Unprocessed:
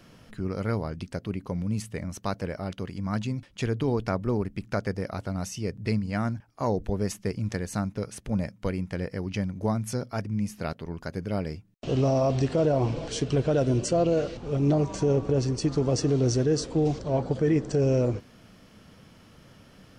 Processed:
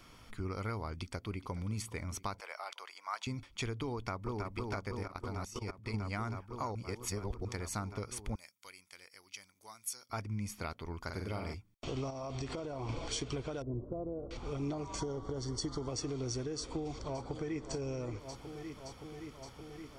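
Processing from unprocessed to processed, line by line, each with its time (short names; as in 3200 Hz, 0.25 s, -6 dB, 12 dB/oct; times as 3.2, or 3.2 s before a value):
0.88–1.72 echo throw 0.42 s, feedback 60%, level -17.5 dB
2.4–3.27 HPF 660 Hz 24 dB/oct
3.94–4.51 echo throw 0.32 s, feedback 85%, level -5 dB
5.03–5.94 level quantiser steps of 16 dB
6.75–7.45 reverse
8.35–10.1 differentiator
11.03–11.54 flutter echo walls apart 8 m, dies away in 0.56 s
12.1–12.89 compressor, threshold -27 dBFS
13.62–14.31 Gaussian blur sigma 12 samples
15–15.88 Butterworth band-stop 2500 Hz, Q 3.1
16.57–17.69 echo throw 0.57 s, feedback 80%, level -13.5 dB
whole clip: bell 170 Hz -13 dB 1.3 oct; compressor, threshold -33 dBFS; comb 0.9 ms, depth 46%; gain -1.5 dB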